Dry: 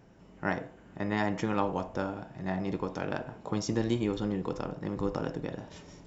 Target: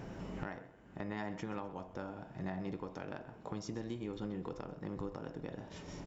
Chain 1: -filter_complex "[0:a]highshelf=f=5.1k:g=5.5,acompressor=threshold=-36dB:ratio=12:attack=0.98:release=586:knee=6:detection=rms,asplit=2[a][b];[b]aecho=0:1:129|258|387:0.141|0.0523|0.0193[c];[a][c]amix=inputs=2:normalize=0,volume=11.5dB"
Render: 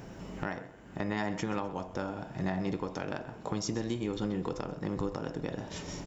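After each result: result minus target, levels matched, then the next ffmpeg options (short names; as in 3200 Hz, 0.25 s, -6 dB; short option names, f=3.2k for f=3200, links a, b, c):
compressor: peak gain reduction -7.5 dB; 8000 Hz band +5.5 dB
-filter_complex "[0:a]highshelf=f=5.1k:g=5.5,acompressor=threshold=-44.5dB:ratio=12:attack=0.98:release=586:knee=6:detection=rms,asplit=2[a][b];[b]aecho=0:1:129|258|387:0.141|0.0523|0.0193[c];[a][c]amix=inputs=2:normalize=0,volume=11.5dB"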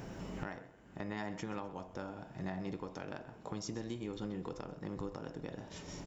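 8000 Hz band +5.5 dB
-filter_complex "[0:a]highshelf=f=5.1k:g=-4,acompressor=threshold=-44.5dB:ratio=12:attack=0.98:release=586:knee=6:detection=rms,asplit=2[a][b];[b]aecho=0:1:129|258|387:0.141|0.0523|0.0193[c];[a][c]amix=inputs=2:normalize=0,volume=11.5dB"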